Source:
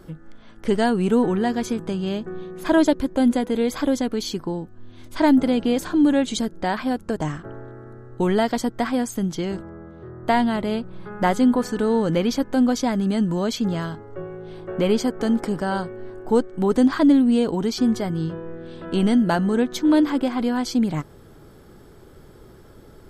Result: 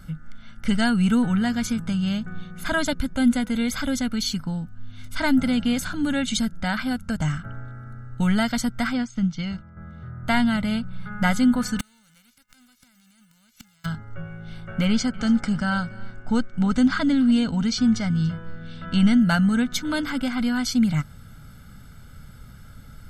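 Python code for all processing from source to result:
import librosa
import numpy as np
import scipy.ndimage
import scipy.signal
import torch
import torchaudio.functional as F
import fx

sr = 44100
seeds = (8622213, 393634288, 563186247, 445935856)

y = fx.chain(x, sr, fx.lowpass(hz=5800.0, slope=24),
    fx.notch(hz=1600.0, q=19.0),
    fx.upward_expand(threshold_db=-36.0, expansion=1.5), at=(8.93, 9.77))
y = fx.envelope_flatten(y, sr, power=0.3, at=(11.79, 13.84), fade=0.02)
y = fx.gate_flip(y, sr, shuts_db=-14.0, range_db=-39, at=(11.79, 13.84), fade=0.02)
y = fx.chain(y, sr, fx.lowpass(hz=7700.0, slope=24),
    fx.echo_single(ms=287, db=-21.5), at=(14.85, 19.21))
y = fx.band_shelf(y, sr, hz=540.0, db=-13.0, octaves=1.7)
y = y + 0.66 * np.pad(y, (int(1.4 * sr / 1000.0), 0))[:len(y)]
y = y * 10.0 ** (2.0 / 20.0)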